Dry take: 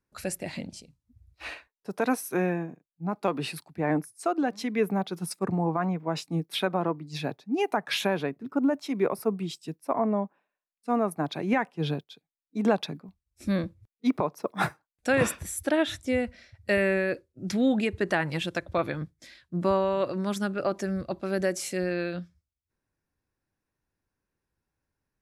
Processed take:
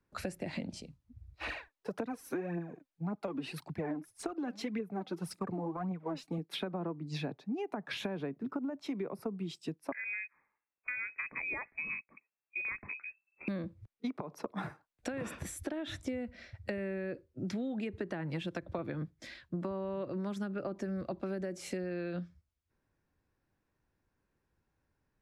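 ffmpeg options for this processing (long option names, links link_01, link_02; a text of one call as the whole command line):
ffmpeg -i in.wav -filter_complex "[0:a]asettb=1/sr,asplit=3[link_01][link_02][link_03];[link_01]atrim=end=1.474[link_04];[link_02]atrim=start=1.47:end=6.38,asetpts=PTS-STARTPTS,afade=type=in:duration=0.004:curve=qsin,afade=type=out:start_time=4.906:duration=0.004:curve=qsin,aphaser=in_gain=1:out_gain=1:delay=4:decay=0.63:speed=1.8:type=triangular[link_05];[link_03]atrim=start=6.376[link_06];[link_04][link_05]acrossfade=duration=0.004:curve1=hsin:curve2=qsin[link_07];[link_07][link_06]acrossfade=duration=0.004:curve1=qsin:curve2=hsin,asettb=1/sr,asplit=3[link_08][link_09][link_10];[link_08]atrim=end=9.924[link_11];[link_09]atrim=start=9.92:end=13.48,asetpts=PTS-STARTPTS,afade=type=in:duration=0.004:curve=qsin,afade=type=out:start_time=3.556:duration=0.004:curve=qsin,lowpass=frequency=2300:width_type=q:width=0.5098,lowpass=frequency=2300:width_type=q:width=0.6013,lowpass=frequency=2300:width_type=q:width=0.9,lowpass=frequency=2300:width_type=q:width=2.563,afreqshift=-2700[link_12];[link_10]atrim=start=13.476[link_13];[link_11][link_12]acrossfade=duration=0.004:curve1=hsin:curve2=qsin[link_14];[link_14][link_13]acrossfade=duration=0.004:curve1=qsin:curve2=hsin,asplit=3[link_15][link_16][link_17];[link_15]afade=type=out:start_time=14.2:duration=0.02[link_18];[link_16]acompressor=threshold=-28dB:ratio=6:attack=3.2:release=140:knee=1:detection=peak,afade=type=in:start_time=14.2:duration=0.02,afade=type=out:start_time=15.9:duration=0.02[link_19];[link_17]afade=type=in:start_time=15.9:duration=0.02[link_20];[link_18][link_19][link_20]amix=inputs=3:normalize=0,acrossover=split=150|370[link_21][link_22][link_23];[link_21]acompressor=threshold=-49dB:ratio=4[link_24];[link_22]acompressor=threshold=-32dB:ratio=4[link_25];[link_23]acompressor=threshold=-37dB:ratio=4[link_26];[link_24][link_25][link_26]amix=inputs=3:normalize=0,lowpass=frequency=2700:poles=1,acompressor=threshold=-39dB:ratio=6,volume=4.5dB" out.wav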